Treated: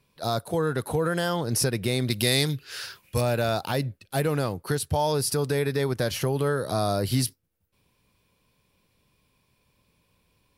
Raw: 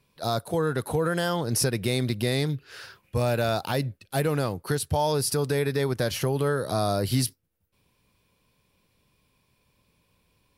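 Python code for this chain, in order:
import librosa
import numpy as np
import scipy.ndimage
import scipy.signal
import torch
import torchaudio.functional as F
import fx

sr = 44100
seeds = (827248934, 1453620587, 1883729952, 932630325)

y = fx.high_shelf(x, sr, hz=2300.0, db=11.5, at=(2.1, 3.21))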